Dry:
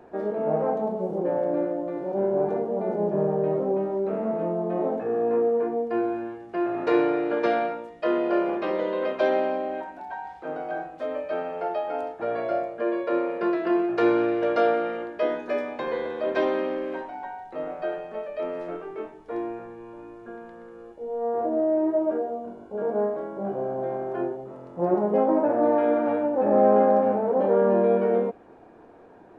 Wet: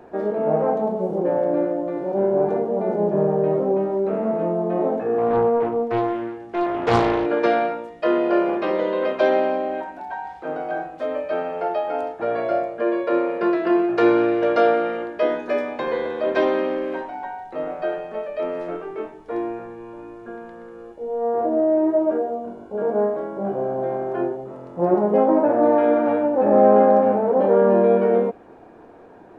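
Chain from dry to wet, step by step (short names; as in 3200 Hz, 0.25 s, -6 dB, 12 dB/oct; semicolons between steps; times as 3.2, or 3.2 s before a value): 5.18–7.26 Doppler distortion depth 0.71 ms; gain +4.5 dB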